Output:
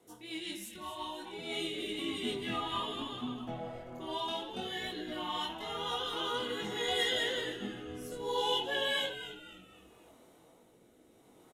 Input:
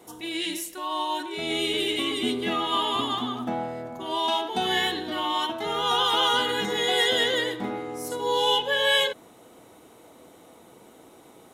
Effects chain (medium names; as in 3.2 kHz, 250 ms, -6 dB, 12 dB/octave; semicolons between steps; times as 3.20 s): rotary cabinet horn 5.5 Hz, later 0.65 Hz, at 0.98 s; chorus voices 2, 0.6 Hz, delay 21 ms, depth 4.7 ms; frequency-shifting echo 257 ms, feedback 39%, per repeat -120 Hz, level -11.5 dB; trim -5.5 dB